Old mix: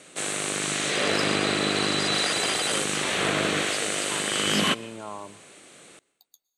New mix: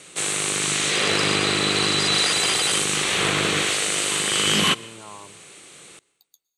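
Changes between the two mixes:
background +6.0 dB
master: add graphic EQ with 15 bands 250 Hz −8 dB, 630 Hz −8 dB, 1,600 Hz −4 dB

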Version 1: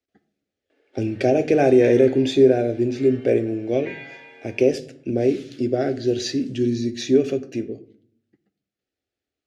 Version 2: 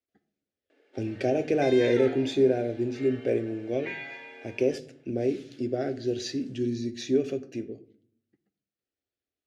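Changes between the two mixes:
speech −7.5 dB
second sound +9.0 dB

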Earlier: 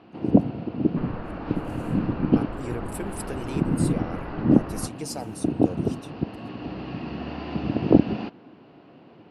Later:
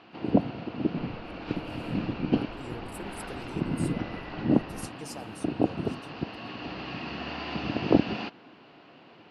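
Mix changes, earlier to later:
speech −8.0 dB
first sound: add tilt shelving filter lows −7 dB, about 820 Hz
second sound −9.5 dB

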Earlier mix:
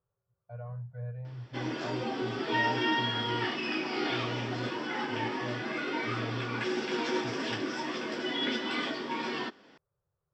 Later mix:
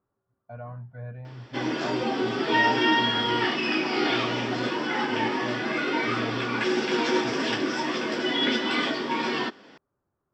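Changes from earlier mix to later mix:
speech: remove drawn EQ curve 160 Hz 0 dB, 250 Hz −27 dB, 490 Hz −1 dB, 690 Hz −8 dB
background +7.0 dB

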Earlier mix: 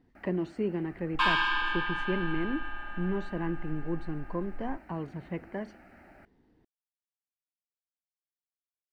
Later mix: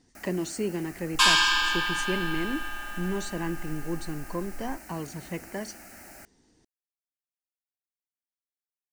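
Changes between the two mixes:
first sound +3.0 dB
master: remove high-frequency loss of the air 490 metres

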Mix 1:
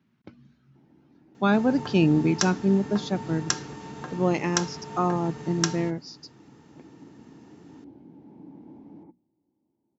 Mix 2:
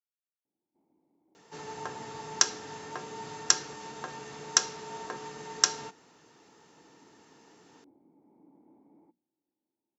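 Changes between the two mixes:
speech: muted
first sound −9.0 dB
master: add bass and treble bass −13 dB, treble +5 dB

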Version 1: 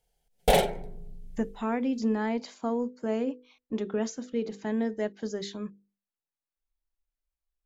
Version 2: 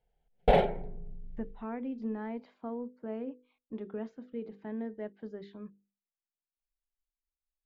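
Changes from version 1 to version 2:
speech −8.0 dB
master: add high-frequency loss of the air 460 metres

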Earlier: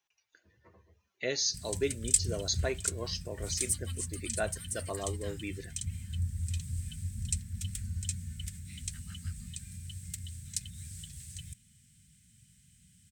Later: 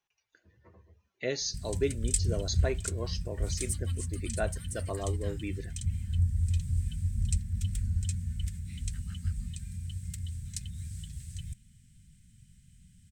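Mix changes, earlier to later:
background: remove high-pass filter 59 Hz
master: add spectral tilt −1.5 dB per octave

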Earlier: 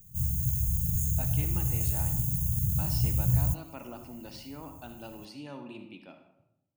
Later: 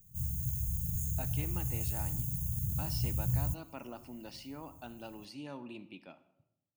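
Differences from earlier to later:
speech: send −9.5 dB
background −6.5 dB

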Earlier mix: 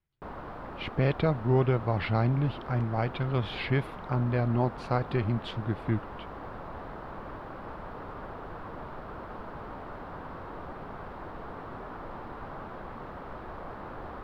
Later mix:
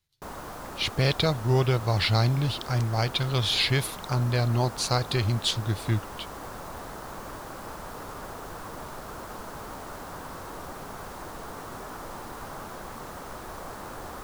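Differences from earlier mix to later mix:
speech: add graphic EQ with 15 bands 100 Hz +6 dB, 250 Hz −4 dB, 4,000 Hz +8 dB
master: remove high-frequency loss of the air 430 metres

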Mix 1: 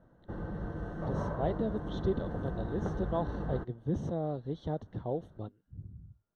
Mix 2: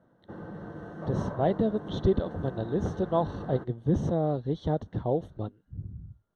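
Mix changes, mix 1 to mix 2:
speech +7.0 dB
background: add high-pass filter 140 Hz 12 dB per octave

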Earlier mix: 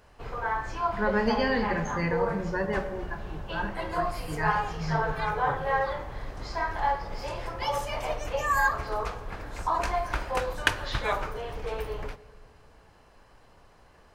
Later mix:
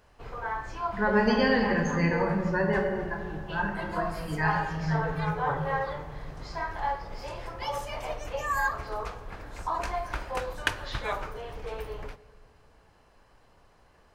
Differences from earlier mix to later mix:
speech: send +10.0 dB
background −3.5 dB

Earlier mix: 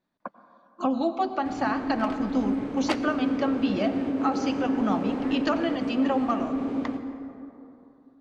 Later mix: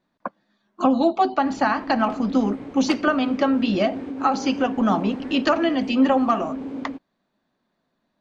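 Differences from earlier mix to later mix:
speech +8.0 dB
second sound −3.0 dB
reverb: off

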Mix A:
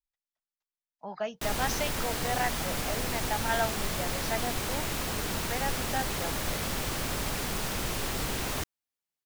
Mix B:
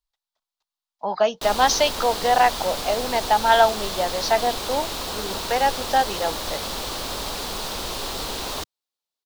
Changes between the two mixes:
speech +9.5 dB
master: add octave-band graphic EQ 125/500/1,000/2,000/4,000 Hz −8/+4/+6/−5/+10 dB

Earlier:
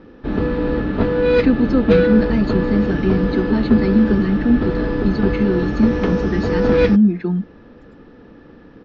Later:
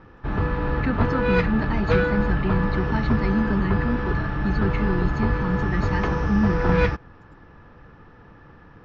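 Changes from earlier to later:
speech: entry −0.60 s
master: add octave-band graphic EQ 125/250/500/1,000/4,000 Hz +5/−12/−7/+5/−7 dB

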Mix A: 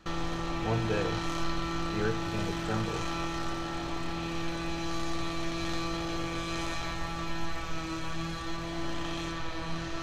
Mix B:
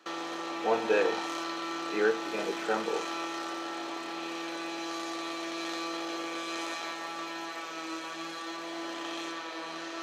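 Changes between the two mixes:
speech +7.0 dB
master: add high-pass filter 310 Hz 24 dB per octave

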